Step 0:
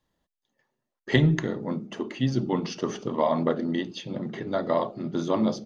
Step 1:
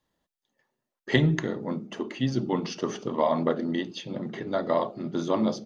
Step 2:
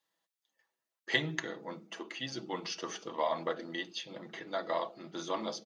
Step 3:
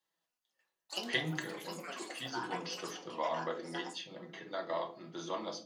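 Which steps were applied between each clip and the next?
low shelf 110 Hz -6.5 dB
HPF 1300 Hz 6 dB/oct; comb 6.1 ms, depth 45%; gain -1.5 dB
echoes that change speed 0.208 s, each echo +7 st, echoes 3, each echo -6 dB; shoebox room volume 210 m³, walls furnished, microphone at 1 m; gain -4.5 dB

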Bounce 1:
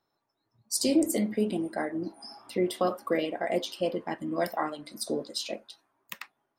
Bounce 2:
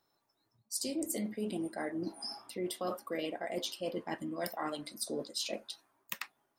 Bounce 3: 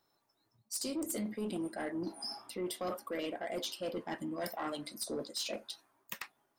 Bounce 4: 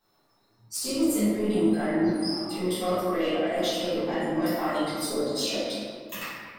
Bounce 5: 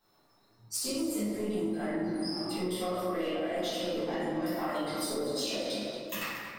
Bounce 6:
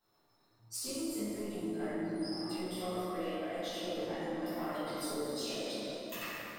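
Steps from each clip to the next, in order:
high shelf 4300 Hz +7.5 dB; reverse; compressor 6:1, threshold -34 dBFS, peak gain reduction 15 dB; reverse
soft clip -31 dBFS, distortion -16 dB; gain +1 dB
reverb RT60 1.9 s, pre-delay 4 ms, DRR -14 dB; gain -3 dB
compressor, threshold -30 dBFS, peak gain reduction 11.5 dB; echo with dull and thin repeats by turns 0.115 s, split 1100 Hz, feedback 64%, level -10.5 dB
plate-style reverb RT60 2.7 s, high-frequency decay 0.65×, DRR 1.5 dB; gain -7 dB

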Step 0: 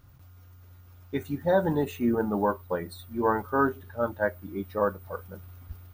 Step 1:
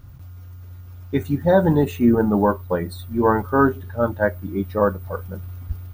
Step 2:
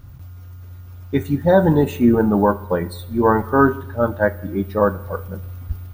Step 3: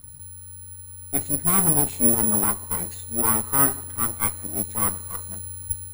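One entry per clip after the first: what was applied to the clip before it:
low shelf 240 Hz +8.5 dB; gain +5.5 dB
Schroeder reverb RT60 1 s, combs from 25 ms, DRR 16.5 dB; gain +2 dB
minimum comb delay 0.86 ms; careless resampling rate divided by 4×, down none, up zero stuff; gain -9 dB

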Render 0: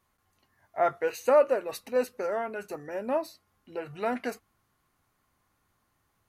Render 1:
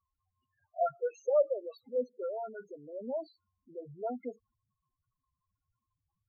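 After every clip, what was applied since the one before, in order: loudest bins only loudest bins 4; tremolo 4.9 Hz, depth 32%; gain -3.5 dB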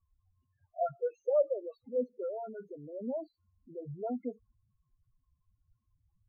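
tilt -4.5 dB/oct; gain -4.5 dB

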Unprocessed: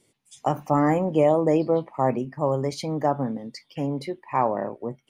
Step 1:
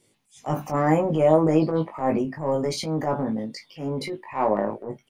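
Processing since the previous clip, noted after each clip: transient shaper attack -11 dB, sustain +5 dB; doubler 19 ms -3.5 dB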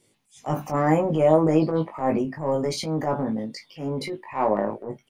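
nothing audible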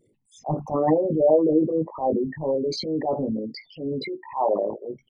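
formant sharpening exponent 3

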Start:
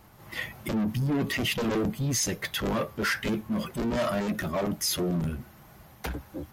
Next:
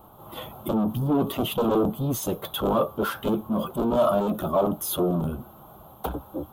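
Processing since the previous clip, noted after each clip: EQ curve 120 Hz 0 dB, 220 Hz +3 dB, 310 Hz +5 dB, 760 Hz +9 dB, 1300 Hz +6 dB, 1900 Hz -20 dB, 3400 Hz +2 dB, 5000 Hz -15 dB, 15000 Hz +9 dB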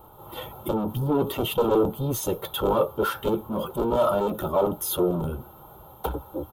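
comb 2.2 ms, depth 47%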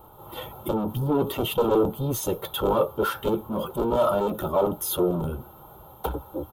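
nothing audible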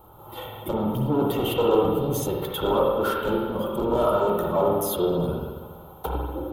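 reverb RT60 1.5 s, pre-delay 46 ms, DRR -1 dB; gain -2 dB

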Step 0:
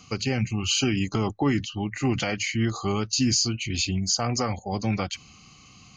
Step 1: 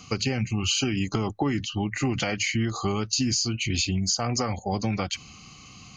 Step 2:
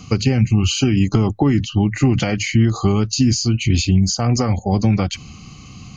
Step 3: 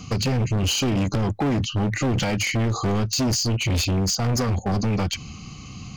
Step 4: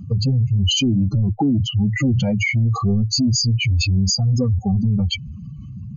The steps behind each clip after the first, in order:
compressor, threshold -26 dBFS, peak gain reduction 7.5 dB; gain +4 dB
low shelf 370 Hz +11 dB; gain +3 dB
overloaded stage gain 19.5 dB
spectral contrast raised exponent 2.8; gain +5 dB

